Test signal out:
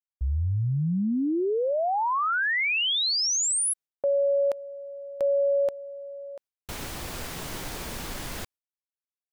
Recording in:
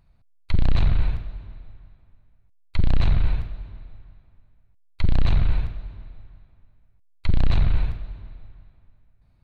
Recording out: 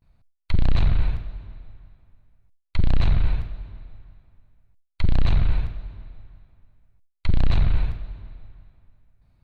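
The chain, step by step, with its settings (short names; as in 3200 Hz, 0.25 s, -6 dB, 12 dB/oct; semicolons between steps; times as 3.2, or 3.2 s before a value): gate with hold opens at -53 dBFS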